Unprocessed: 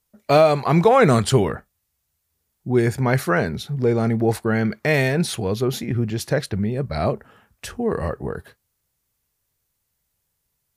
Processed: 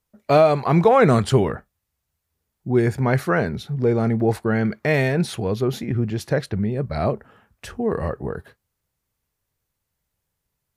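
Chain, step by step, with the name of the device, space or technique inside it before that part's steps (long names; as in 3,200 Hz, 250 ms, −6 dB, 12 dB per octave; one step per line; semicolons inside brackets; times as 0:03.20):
behind a face mask (high-shelf EQ 3,400 Hz −7.5 dB)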